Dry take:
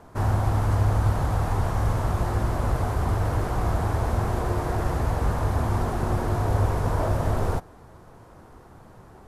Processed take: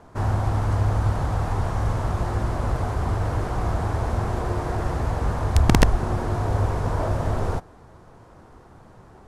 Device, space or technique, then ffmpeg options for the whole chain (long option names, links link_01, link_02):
overflowing digital effects unit: -filter_complex "[0:a]asplit=3[link_01][link_02][link_03];[link_01]afade=type=out:start_time=5.53:duration=0.02[link_04];[link_02]asubboost=boost=6.5:cutoff=70,afade=type=in:start_time=5.53:duration=0.02,afade=type=out:start_time=5.95:duration=0.02[link_05];[link_03]afade=type=in:start_time=5.95:duration=0.02[link_06];[link_04][link_05][link_06]amix=inputs=3:normalize=0,aeval=exprs='(mod(2.24*val(0)+1,2)-1)/2.24':channel_layout=same,lowpass=9100"